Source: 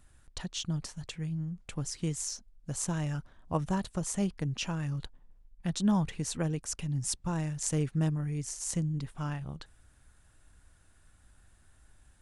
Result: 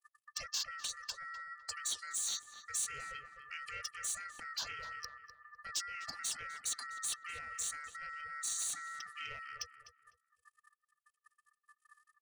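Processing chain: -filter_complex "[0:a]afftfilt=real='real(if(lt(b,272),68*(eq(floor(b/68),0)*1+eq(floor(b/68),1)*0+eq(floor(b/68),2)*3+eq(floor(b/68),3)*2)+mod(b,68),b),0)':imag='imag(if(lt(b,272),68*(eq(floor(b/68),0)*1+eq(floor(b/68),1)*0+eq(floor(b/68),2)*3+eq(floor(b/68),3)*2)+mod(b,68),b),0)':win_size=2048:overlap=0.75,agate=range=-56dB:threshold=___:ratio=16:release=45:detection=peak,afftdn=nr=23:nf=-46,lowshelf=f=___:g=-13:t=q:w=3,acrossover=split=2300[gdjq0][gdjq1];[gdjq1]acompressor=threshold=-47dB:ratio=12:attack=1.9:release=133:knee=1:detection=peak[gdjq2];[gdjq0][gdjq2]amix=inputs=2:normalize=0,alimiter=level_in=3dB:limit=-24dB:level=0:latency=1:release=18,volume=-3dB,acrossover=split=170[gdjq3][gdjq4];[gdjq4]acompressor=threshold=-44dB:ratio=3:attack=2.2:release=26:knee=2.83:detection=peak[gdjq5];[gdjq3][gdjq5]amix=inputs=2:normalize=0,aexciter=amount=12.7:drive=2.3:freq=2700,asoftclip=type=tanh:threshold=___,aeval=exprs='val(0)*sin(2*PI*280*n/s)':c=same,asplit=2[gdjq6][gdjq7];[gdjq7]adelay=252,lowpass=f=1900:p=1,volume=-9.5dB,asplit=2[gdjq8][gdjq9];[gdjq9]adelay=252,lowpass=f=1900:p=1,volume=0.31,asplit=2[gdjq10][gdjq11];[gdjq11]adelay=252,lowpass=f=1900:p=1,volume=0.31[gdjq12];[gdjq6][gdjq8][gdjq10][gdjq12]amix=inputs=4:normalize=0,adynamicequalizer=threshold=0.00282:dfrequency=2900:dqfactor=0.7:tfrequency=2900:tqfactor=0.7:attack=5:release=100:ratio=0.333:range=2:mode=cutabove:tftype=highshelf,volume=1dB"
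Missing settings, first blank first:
-58dB, 130, -27dB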